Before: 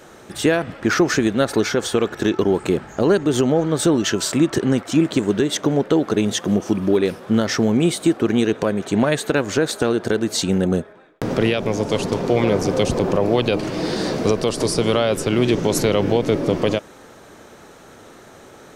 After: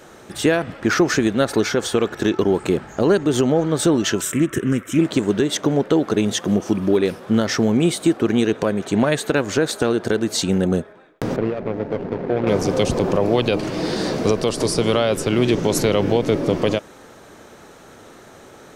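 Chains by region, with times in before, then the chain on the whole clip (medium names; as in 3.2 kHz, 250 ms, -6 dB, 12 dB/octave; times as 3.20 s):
4.21–4.99 s: treble shelf 6.6 kHz +8.5 dB + static phaser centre 1.9 kHz, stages 4 + loudspeaker Doppler distortion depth 0.11 ms
11.36–12.47 s: median filter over 41 samples + Bessel low-pass 1.9 kHz + bass shelf 240 Hz -6.5 dB
whole clip: none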